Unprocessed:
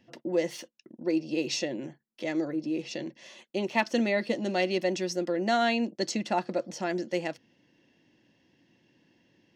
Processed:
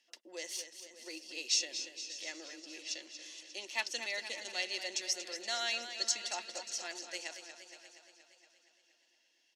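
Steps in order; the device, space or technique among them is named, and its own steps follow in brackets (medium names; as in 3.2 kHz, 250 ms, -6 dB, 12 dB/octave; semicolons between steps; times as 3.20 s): high-pass 260 Hz 24 dB/octave; piezo pickup straight into a mixer (low-pass 7.9 kHz 12 dB/octave; differentiator); treble shelf 5.8 kHz +6.5 dB; feedback delay 588 ms, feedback 26%, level -16 dB; modulated delay 235 ms, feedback 63%, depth 61 cents, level -10 dB; trim +3.5 dB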